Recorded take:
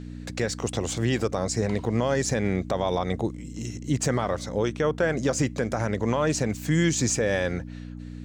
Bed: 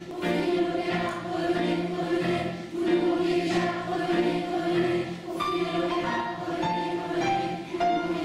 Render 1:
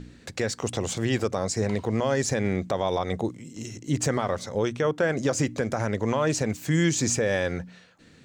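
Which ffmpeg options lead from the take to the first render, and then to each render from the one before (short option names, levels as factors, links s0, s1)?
-af "bandreject=f=60:t=h:w=4,bandreject=f=120:t=h:w=4,bandreject=f=180:t=h:w=4,bandreject=f=240:t=h:w=4,bandreject=f=300:t=h:w=4"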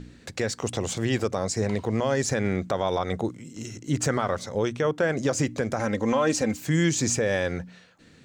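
-filter_complex "[0:a]asettb=1/sr,asplit=3[s0][s1][s2];[s0]atrim=end=2.294[s3];[s1]atrim=start=2.29:end=4.37,asetpts=PTS-STARTPTS,afade=t=in:d=0.004:c=qsin,afade=t=out:st=2.076:d=0.004:c=qsin,equalizer=f=1400:w=4.1:g=6[s4];[s2]atrim=start=4.366[s5];[s3][s4]acrossfade=d=0.004:c1=hsin:c2=qsin[s6];[s6][s5]acrossfade=d=0.004:c1=qsin:c2=hsin,asettb=1/sr,asplit=3[s7][s8][s9];[s7]atrim=end=5.794[s10];[s8]atrim=start=5.79:end=6.61,asetpts=PTS-STARTPTS,afade=t=in:d=0.004:c=qsin,afade=t=out:st=0.816:d=0.004:c=qsin,aecho=1:1:3.8:0.65,atrim=end_sample=36162[s11];[s9]atrim=start=6.606[s12];[s10][s11]acrossfade=d=0.004:c1=hsin:c2=qsin[s13];[s13][s12]acrossfade=d=0.004:c1=qsin:c2=hsin"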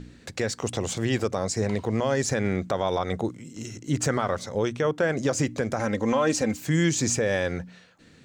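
-af anull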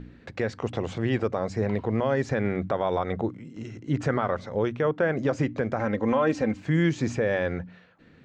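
-af "lowpass=2400,bandreject=f=96.06:t=h:w=4,bandreject=f=192.12:t=h:w=4,bandreject=f=288.18:t=h:w=4"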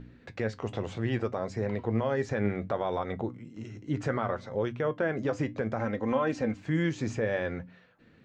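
-af "flanger=delay=7.6:depth=2.3:regen=66:speed=0.65:shape=sinusoidal"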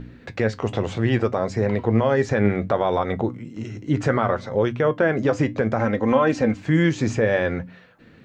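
-af "volume=2.99"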